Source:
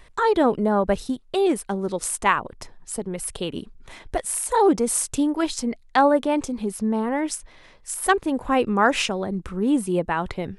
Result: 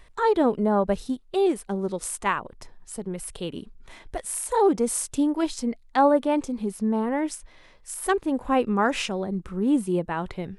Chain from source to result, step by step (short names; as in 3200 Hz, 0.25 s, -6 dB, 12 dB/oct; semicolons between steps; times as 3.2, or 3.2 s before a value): harmonic-percussive split percussive -6 dB; gain -1 dB